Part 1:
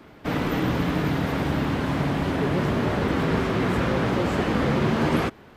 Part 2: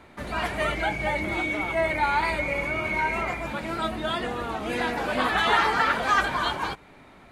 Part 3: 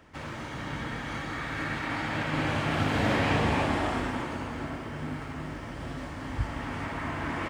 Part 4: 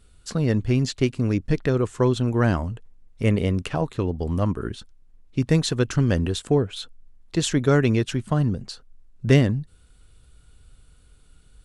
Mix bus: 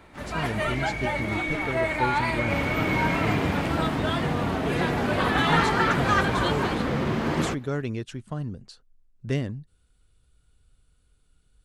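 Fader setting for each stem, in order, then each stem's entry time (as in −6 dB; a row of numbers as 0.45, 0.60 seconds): −4.0, −1.5, −5.0, −10.5 decibels; 2.25, 0.00, 0.00, 0.00 seconds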